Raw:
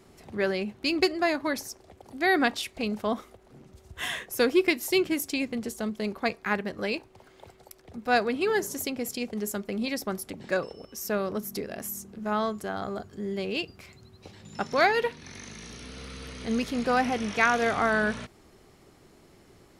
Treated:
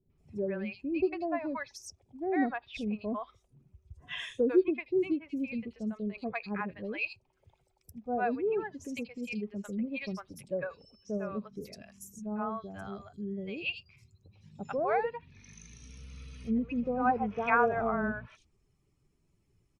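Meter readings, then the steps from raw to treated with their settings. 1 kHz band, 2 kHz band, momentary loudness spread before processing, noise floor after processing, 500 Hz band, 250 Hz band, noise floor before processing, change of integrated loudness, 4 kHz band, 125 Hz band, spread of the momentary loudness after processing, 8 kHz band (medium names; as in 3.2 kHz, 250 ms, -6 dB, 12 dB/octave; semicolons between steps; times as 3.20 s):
-4.5 dB, -9.0 dB, 16 LU, -73 dBFS, -4.5 dB, -3.5 dB, -57 dBFS, -5.0 dB, -13.5 dB, -3.5 dB, 19 LU, -15.0 dB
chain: expander on every frequency bin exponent 1.5; three bands offset in time lows, mids, highs 100/180 ms, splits 650/4100 Hz; low-pass that closes with the level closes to 970 Hz, closed at -28.5 dBFS; time-frequency box 17.05–17.91 s, 360–1700 Hz +6 dB; peaking EQ 2.5 kHz +9.5 dB 0.2 oct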